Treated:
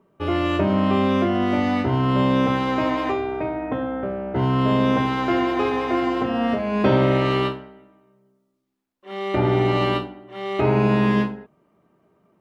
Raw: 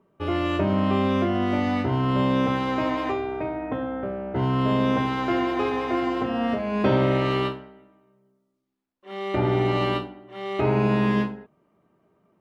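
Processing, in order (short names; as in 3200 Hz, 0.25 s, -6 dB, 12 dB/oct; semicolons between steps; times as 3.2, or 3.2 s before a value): notches 50/100 Hz; gain +3 dB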